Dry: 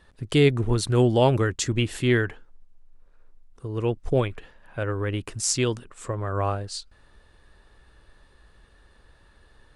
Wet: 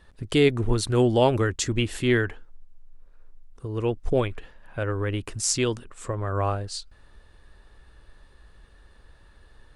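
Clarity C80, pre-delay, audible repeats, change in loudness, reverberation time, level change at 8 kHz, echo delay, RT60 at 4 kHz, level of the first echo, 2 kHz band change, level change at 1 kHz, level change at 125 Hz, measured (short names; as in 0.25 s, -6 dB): none, none, none, -0.5 dB, none, 0.0 dB, none, none, none, 0.0 dB, 0.0 dB, -2.5 dB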